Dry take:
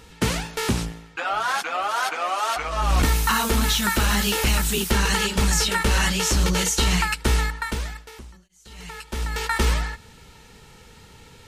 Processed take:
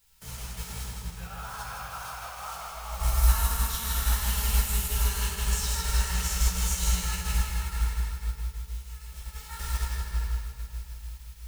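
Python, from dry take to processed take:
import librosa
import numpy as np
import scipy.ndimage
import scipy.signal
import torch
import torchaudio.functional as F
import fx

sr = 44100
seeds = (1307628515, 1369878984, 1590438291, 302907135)

p1 = fx.block_float(x, sr, bits=5)
p2 = fx.peak_eq(p1, sr, hz=2700.0, db=-13.0, octaves=2.7)
p3 = 10.0 ** (-26.5 / 20.0) * np.tanh(p2 / 10.0 ** (-26.5 / 20.0))
p4 = p2 + (p3 * 10.0 ** (-6.5 / 20.0))
p5 = fx.quant_dither(p4, sr, seeds[0], bits=8, dither='triangular')
p6 = fx.tone_stack(p5, sr, knobs='10-0-10')
p7 = p6 + fx.echo_feedback(p6, sr, ms=161, feedback_pct=58, wet_db=-3.5, dry=0)
p8 = fx.room_shoebox(p7, sr, seeds[1], volume_m3=180.0, walls='hard', distance_m=1.1)
p9 = fx.upward_expand(p8, sr, threshold_db=-42.0, expansion=1.5)
y = p9 * 10.0 ** (-4.5 / 20.0)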